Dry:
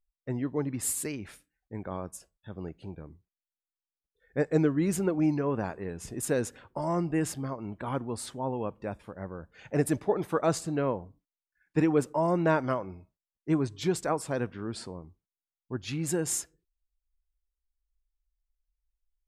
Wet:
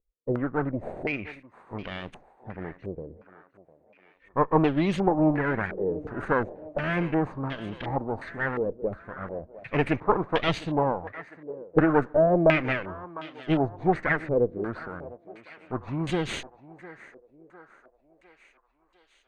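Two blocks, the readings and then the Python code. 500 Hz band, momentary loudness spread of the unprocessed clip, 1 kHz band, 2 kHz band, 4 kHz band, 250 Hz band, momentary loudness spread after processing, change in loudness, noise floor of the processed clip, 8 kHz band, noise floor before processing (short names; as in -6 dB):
+4.5 dB, 16 LU, +6.0 dB, +10.0 dB, +5.5 dB, +2.5 dB, 18 LU, +3.5 dB, -66 dBFS, under -15 dB, under -85 dBFS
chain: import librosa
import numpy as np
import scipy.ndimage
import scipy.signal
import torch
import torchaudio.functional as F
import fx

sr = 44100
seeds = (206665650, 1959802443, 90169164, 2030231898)

y = fx.lower_of_two(x, sr, delay_ms=0.48)
y = fx.echo_thinned(y, sr, ms=704, feedback_pct=59, hz=300.0, wet_db=-16.0)
y = fx.filter_held_lowpass(y, sr, hz=2.8, low_hz=480.0, high_hz=3200.0)
y = F.gain(torch.from_numpy(y), 3.0).numpy()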